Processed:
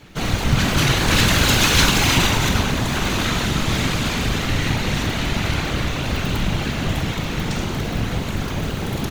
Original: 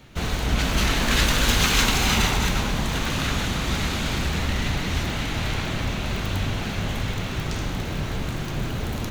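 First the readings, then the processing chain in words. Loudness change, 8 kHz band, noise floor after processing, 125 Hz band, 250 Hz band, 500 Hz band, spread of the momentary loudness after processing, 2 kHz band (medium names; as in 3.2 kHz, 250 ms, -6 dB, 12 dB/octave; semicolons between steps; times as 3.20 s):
+4.5 dB, +4.5 dB, -26 dBFS, +5.0 dB, +5.5 dB, +5.0 dB, 9 LU, +4.5 dB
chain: whisper effect; doubling 45 ms -10.5 dB; trim +4 dB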